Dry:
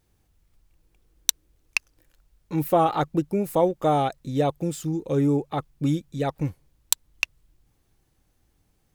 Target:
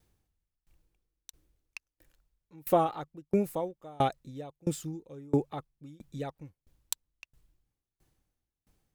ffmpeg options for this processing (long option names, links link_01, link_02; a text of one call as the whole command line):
ffmpeg -i in.wav -af "aeval=exprs='val(0)*pow(10,-31*if(lt(mod(1.5*n/s,1),2*abs(1.5)/1000),1-mod(1.5*n/s,1)/(2*abs(1.5)/1000),(mod(1.5*n/s,1)-2*abs(1.5)/1000)/(1-2*abs(1.5)/1000))/20)':channel_layout=same" out.wav